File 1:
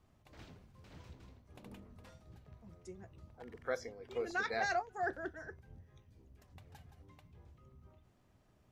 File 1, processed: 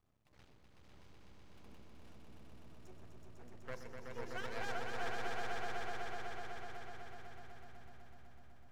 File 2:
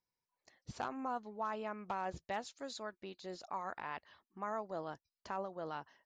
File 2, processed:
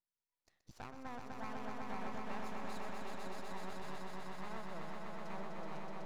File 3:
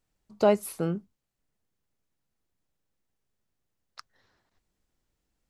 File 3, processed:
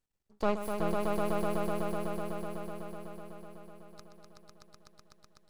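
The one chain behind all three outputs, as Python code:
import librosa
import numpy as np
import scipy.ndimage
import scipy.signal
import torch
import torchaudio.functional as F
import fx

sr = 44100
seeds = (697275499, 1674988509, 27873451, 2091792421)

y = np.maximum(x, 0.0)
y = fx.echo_swell(y, sr, ms=125, loudest=5, wet_db=-4)
y = F.gain(torch.from_numpy(y), -6.0).numpy()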